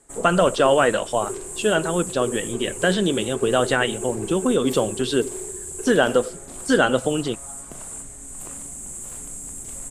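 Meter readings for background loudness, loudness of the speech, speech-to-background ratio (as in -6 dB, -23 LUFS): -32.0 LUFS, -21.5 LUFS, 10.5 dB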